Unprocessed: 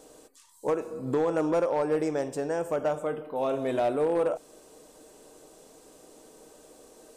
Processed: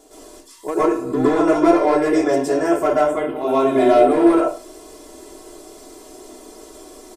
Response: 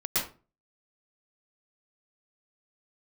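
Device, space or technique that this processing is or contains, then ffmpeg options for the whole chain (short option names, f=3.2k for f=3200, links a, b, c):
microphone above a desk: -filter_complex "[0:a]aecho=1:1:2.9:0.82[a];[1:a]atrim=start_sample=2205[b];[a][b]afir=irnorm=-1:irlink=0,volume=2dB"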